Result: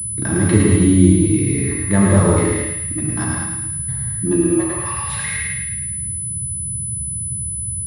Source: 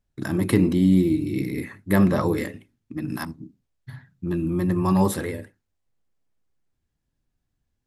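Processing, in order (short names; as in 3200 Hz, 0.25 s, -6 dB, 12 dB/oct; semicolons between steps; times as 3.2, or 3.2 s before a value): in parallel at -1 dB: limiter -16.5 dBFS, peak gain reduction 11 dB; on the sum: high-pass sweep 85 Hz -> 2100 Hz, 4.01–4.92; band noise 60–160 Hz -32 dBFS; on a send: thinning echo 0.108 s, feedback 57%, high-pass 880 Hz, level -4 dB; on the sum: non-linear reverb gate 0.24 s flat, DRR -2.5 dB; pulse-width modulation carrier 10000 Hz; gain -3 dB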